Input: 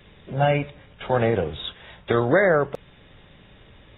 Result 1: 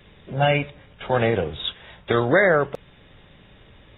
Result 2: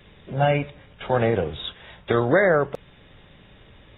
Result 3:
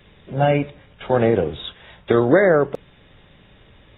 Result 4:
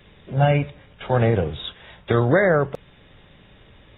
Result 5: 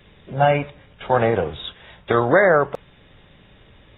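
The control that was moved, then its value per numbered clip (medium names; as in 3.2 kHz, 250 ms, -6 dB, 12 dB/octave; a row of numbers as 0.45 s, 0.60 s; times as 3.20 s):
dynamic bell, frequency: 3.1 kHz, 9.5 kHz, 310 Hz, 110 Hz, 1 kHz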